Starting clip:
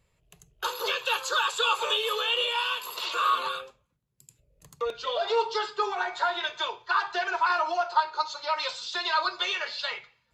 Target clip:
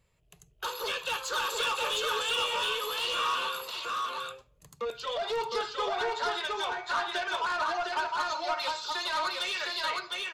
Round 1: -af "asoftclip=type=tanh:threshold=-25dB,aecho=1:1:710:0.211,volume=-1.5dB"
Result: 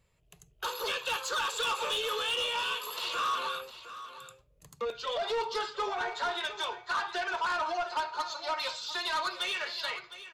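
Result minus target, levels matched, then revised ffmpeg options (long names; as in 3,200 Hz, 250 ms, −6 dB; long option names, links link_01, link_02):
echo-to-direct −11.5 dB
-af "asoftclip=type=tanh:threshold=-25dB,aecho=1:1:710:0.794,volume=-1.5dB"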